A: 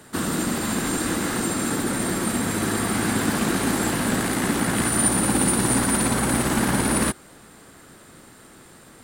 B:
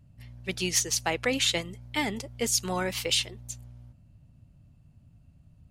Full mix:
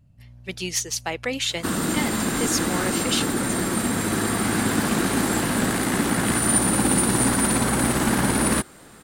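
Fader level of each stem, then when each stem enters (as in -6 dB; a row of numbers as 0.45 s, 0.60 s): +0.5 dB, 0.0 dB; 1.50 s, 0.00 s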